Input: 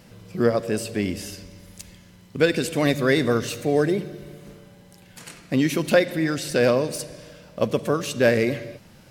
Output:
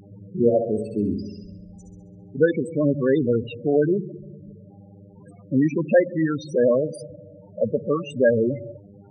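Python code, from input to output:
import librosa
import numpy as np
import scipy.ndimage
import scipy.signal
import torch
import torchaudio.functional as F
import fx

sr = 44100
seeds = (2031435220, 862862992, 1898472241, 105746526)

y = fx.dmg_buzz(x, sr, base_hz=100.0, harmonics=14, level_db=-46.0, tilt_db=-2, odd_only=False)
y = fx.dynamic_eq(y, sr, hz=1100.0, q=2.2, threshold_db=-37.0, ratio=4.0, max_db=3)
y = fx.spec_topn(y, sr, count=8)
y = fx.room_flutter(y, sr, wall_m=11.5, rt60_s=0.67, at=(0.41, 2.41), fade=0.02)
y = y * 10.0 ** (1.5 / 20.0)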